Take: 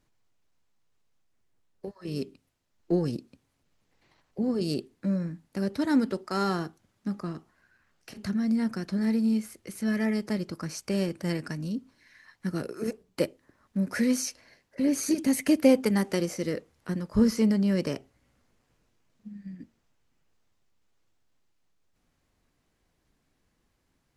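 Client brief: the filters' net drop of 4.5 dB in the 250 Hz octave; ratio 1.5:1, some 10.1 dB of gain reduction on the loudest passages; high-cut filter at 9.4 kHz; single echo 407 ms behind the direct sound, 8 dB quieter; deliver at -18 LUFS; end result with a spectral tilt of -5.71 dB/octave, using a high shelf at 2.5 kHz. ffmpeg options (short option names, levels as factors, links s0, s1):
-af "lowpass=9400,equalizer=f=250:t=o:g=-5.5,highshelf=f=2500:g=-4.5,acompressor=threshold=0.00501:ratio=1.5,aecho=1:1:407:0.398,volume=11.9"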